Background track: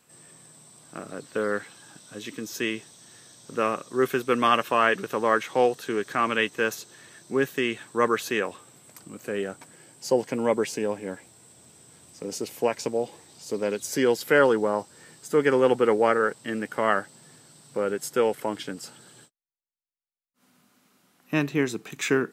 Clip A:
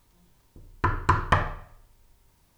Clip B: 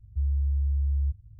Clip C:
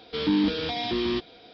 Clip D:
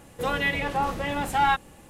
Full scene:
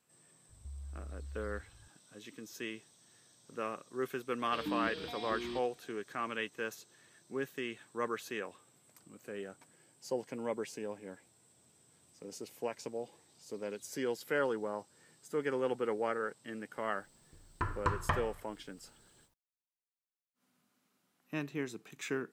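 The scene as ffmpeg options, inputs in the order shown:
ffmpeg -i bed.wav -i cue0.wav -i cue1.wav -i cue2.wav -filter_complex "[0:a]volume=-13.5dB[link_01];[2:a]acompressor=threshold=-33dB:ratio=6:attack=3.2:release=140:knee=1:detection=peak,atrim=end=1.39,asetpts=PTS-STARTPTS,volume=-10.5dB,afade=type=in:duration=0.004:curve=hsin,afade=type=out:start_time=1.386:duration=0.004:curve=hsin,adelay=490[link_02];[3:a]atrim=end=1.53,asetpts=PTS-STARTPTS,volume=-14.5dB,afade=type=in:duration=0.004:curve=hsin,afade=type=out:start_time=1.526:duration=0.004:curve=hsin,adelay=4390[link_03];[1:a]atrim=end=2.57,asetpts=PTS-STARTPTS,volume=-11dB,afade=type=in:duration=0.004:curve=hsin,afade=type=out:start_time=2.566:duration=0.004:curve=hsin,adelay=16770[link_04];[link_01][link_02][link_03][link_04]amix=inputs=4:normalize=0" out.wav

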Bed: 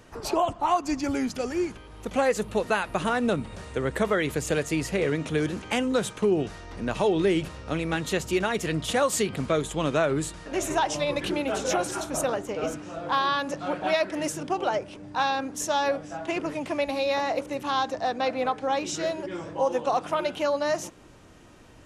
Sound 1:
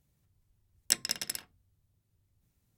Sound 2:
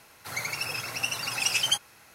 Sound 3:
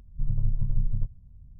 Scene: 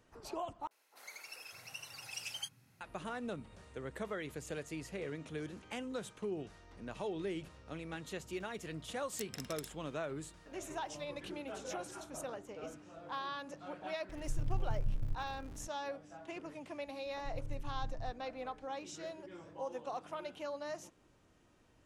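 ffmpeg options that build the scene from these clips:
ffmpeg -i bed.wav -i cue0.wav -i cue1.wav -i cue2.wav -filter_complex "[3:a]asplit=2[link_01][link_02];[0:a]volume=-16.5dB[link_03];[2:a]acrossover=split=280|1200[link_04][link_05][link_06];[link_06]adelay=40[link_07];[link_04]adelay=590[link_08];[link_08][link_05][link_07]amix=inputs=3:normalize=0[link_09];[1:a]acompressor=threshold=-41dB:ratio=6:attack=3.2:release=140:knee=1:detection=peak[link_10];[link_01]aeval=exprs='val(0)+0.5*0.0188*sgn(val(0))':channel_layout=same[link_11];[link_03]asplit=2[link_12][link_13];[link_12]atrim=end=0.674[link_14];[link_09]atrim=end=2.14,asetpts=PTS-STARTPTS,volume=-17.5dB[link_15];[link_13]atrim=start=2.806[link_16];[link_10]atrim=end=2.77,asetpts=PTS-STARTPTS,volume=-2dB,afade=type=in:duration=0.004:curve=hsin,afade=type=out:start_time=2.766:duration=0.004:curve=hsin,adelay=8290[link_17];[link_11]atrim=end=1.59,asetpts=PTS-STARTPTS,volume=-10.5dB,afade=type=in:duration=0.004:curve=hsin,afade=type=out:start_time=1.586:duration=0.004:curve=hsin,adelay=14090[link_18];[link_02]atrim=end=1.59,asetpts=PTS-STARTPTS,volume=-17dB,afade=type=in:duration=0.004:curve=hsin,afade=type=out:start_time=1.586:duration=0.004:curve=hsin,adelay=17060[link_19];[link_14][link_15]acrossfade=duration=0.004:curve1=hsin:curve2=hsin[link_20];[link_20][link_16]acrossfade=duration=0.004:curve1=hsin:curve2=hsin[link_21];[link_21][link_17][link_18][link_19]amix=inputs=4:normalize=0" out.wav

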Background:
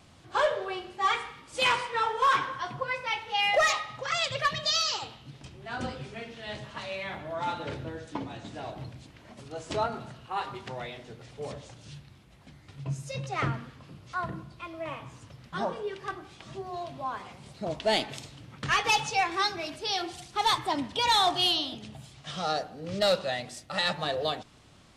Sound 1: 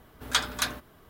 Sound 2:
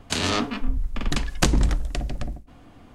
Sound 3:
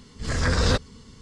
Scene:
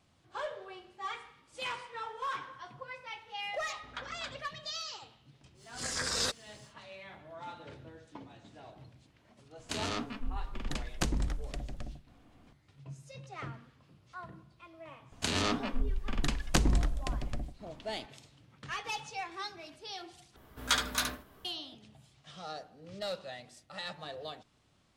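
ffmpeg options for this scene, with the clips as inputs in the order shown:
ffmpeg -i bed.wav -i cue0.wav -i cue1.wav -i cue2.wav -filter_complex "[1:a]asplit=2[link_01][link_02];[2:a]asplit=2[link_03][link_04];[0:a]volume=-13dB[link_05];[link_01]lowpass=2400[link_06];[3:a]aemphasis=mode=production:type=riaa[link_07];[link_02]aecho=1:1:15|71:0.596|0.501[link_08];[link_05]asplit=2[link_09][link_10];[link_09]atrim=end=20.364[link_11];[link_08]atrim=end=1.09,asetpts=PTS-STARTPTS,volume=-4.5dB[link_12];[link_10]atrim=start=21.446[link_13];[link_06]atrim=end=1.09,asetpts=PTS-STARTPTS,volume=-14dB,afade=type=in:duration=0.004:curve=hsin,afade=type=out:start_time=1.086:duration=0.004:curve=hsin,adelay=3620[link_14];[link_07]atrim=end=1.21,asetpts=PTS-STARTPTS,volume=-11dB,afade=type=in:duration=0.1,afade=type=out:start_time=1.11:duration=0.1,adelay=5540[link_15];[link_03]atrim=end=2.94,asetpts=PTS-STARTPTS,volume=-12dB,afade=type=in:duration=0.004:curve=hsin,afade=type=out:start_time=2.936:duration=0.004:curve=hsin,adelay=9590[link_16];[link_04]atrim=end=2.94,asetpts=PTS-STARTPTS,volume=-7dB,afade=type=in:duration=0.004:curve=hsin,afade=type=out:start_time=2.936:duration=0.004:curve=hsin,adelay=15120[link_17];[link_11][link_12]acrossfade=duration=0.004:curve1=hsin:curve2=hsin[link_18];[link_18][link_13]acrossfade=duration=0.004:curve1=hsin:curve2=hsin[link_19];[link_19][link_14][link_15][link_16][link_17]amix=inputs=5:normalize=0" out.wav

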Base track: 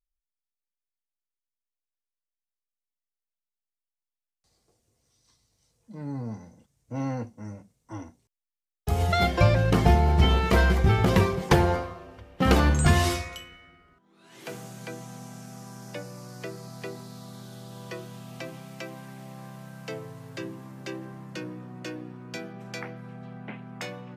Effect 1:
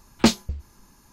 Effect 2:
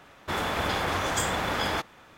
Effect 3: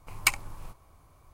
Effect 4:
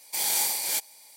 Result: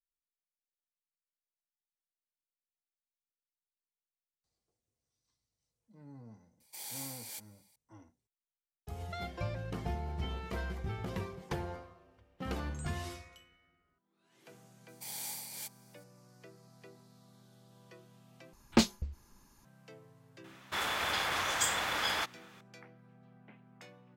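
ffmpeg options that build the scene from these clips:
ffmpeg -i bed.wav -i cue0.wav -i cue1.wav -i cue2.wav -i cue3.wav -filter_complex "[4:a]asplit=2[link_01][link_02];[0:a]volume=-18dB[link_03];[2:a]tiltshelf=frequency=750:gain=-7.5[link_04];[link_03]asplit=2[link_05][link_06];[link_05]atrim=end=18.534[link_07];[1:a]atrim=end=1.12,asetpts=PTS-STARTPTS,volume=-8dB[link_08];[link_06]atrim=start=19.646[link_09];[link_01]atrim=end=1.16,asetpts=PTS-STARTPTS,volume=-17.5dB,afade=type=in:duration=0.004:curve=hsin,afade=type=out:start_time=1.156:duration=0.004:curve=hsin,adelay=6600[link_10];[link_02]atrim=end=1.16,asetpts=PTS-STARTPTS,volume=-16dB,afade=type=in:duration=0.004:curve=hsin,afade=type=out:start_time=1.156:duration=0.004:curve=hsin,adelay=14880[link_11];[link_04]atrim=end=2.17,asetpts=PTS-STARTPTS,volume=-8dB,afade=type=in:duration=0.004:curve=hsin,afade=type=out:start_time=2.166:duration=0.004:curve=hsin,adelay=20440[link_12];[link_07][link_08]acrossfade=duration=0.004:curve1=hsin:curve2=hsin[link_13];[link_13][link_09]acrossfade=duration=0.004:curve1=hsin:curve2=hsin[link_14];[link_14][link_10][link_11][link_12]amix=inputs=4:normalize=0" out.wav

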